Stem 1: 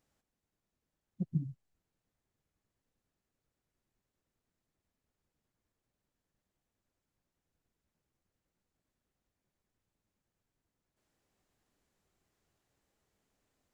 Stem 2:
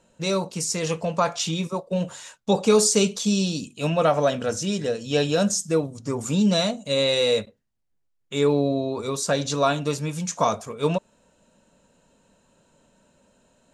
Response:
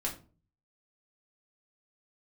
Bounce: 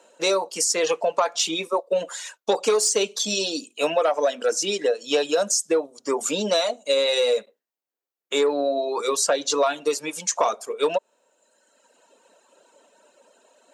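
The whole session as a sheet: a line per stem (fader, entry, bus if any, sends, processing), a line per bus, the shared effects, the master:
-16.0 dB, 0.00 s, no send, dry
+0.5 dB, 0.00 s, no send, reverb removal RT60 1.3 s; sine folder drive 3 dB, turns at -7 dBFS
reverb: off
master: HPF 340 Hz 24 dB/oct; bell 690 Hz +2.5 dB 1.8 oct; compressor 5:1, threshold -18 dBFS, peak gain reduction 10 dB

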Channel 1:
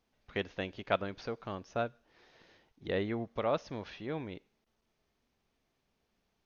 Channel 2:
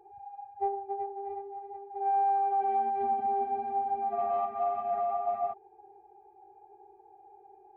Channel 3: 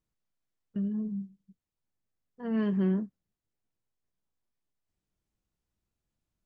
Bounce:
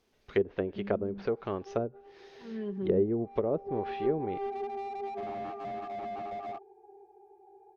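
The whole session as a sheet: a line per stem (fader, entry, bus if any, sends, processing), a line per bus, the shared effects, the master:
+3.0 dB, 0.00 s, no send, dry
-5.0 dB, 1.05 s, no send, slew limiter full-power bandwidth 16 Hz; auto duck -20 dB, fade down 0.80 s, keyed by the third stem
-15.5 dB, 0.00 s, no send, comb 5.1 ms, depth 80%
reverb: off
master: high shelf 2100 Hz +4.5 dB; treble ducked by the level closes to 450 Hz, closed at -27.5 dBFS; bell 400 Hz +10.5 dB 0.45 oct

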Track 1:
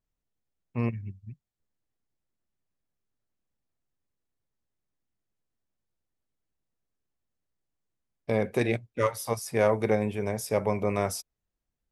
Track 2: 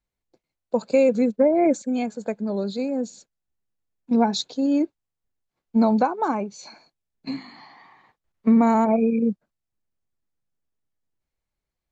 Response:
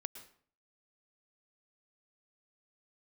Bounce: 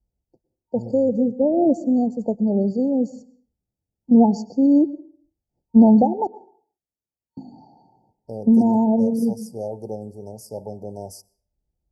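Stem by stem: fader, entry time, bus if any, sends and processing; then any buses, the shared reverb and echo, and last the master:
-7.5 dB, 0.00 s, send -13.5 dB, dry
-3.5 dB, 0.00 s, muted 6.27–7.37, send -4 dB, tilt -3.5 dB/oct; auto duck -9 dB, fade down 0.75 s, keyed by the first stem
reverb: on, RT60 0.50 s, pre-delay 0.103 s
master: FFT band-reject 920–4400 Hz; HPF 40 Hz

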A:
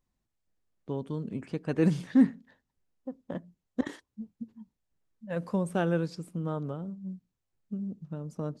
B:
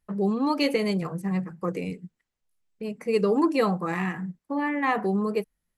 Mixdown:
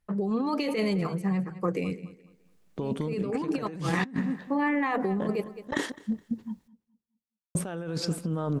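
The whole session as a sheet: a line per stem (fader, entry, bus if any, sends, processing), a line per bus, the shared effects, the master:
-2.0 dB, 1.90 s, muted 6.68–7.55, no send, echo send -23.5 dB, low shelf 340 Hz -4 dB; AGC gain up to 12.5 dB
-3.0 dB, 0.00 s, no send, echo send -17.5 dB, high shelf 9600 Hz -7.5 dB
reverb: off
echo: feedback echo 0.21 s, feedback 29%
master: negative-ratio compressor -29 dBFS, ratio -1

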